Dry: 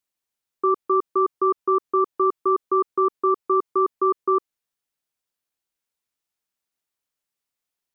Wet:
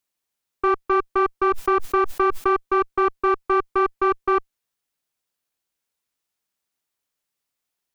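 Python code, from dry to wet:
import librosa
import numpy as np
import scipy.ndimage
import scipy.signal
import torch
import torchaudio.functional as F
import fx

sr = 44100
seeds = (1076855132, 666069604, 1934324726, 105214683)

y = fx.diode_clip(x, sr, knee_db=-21.0)
y = fx.pre_swell(y, sr, db_per_s=32.0, at=(1.5, 2.54))
y = F.gain(torch.from_numpy(y), 3.0).numpy()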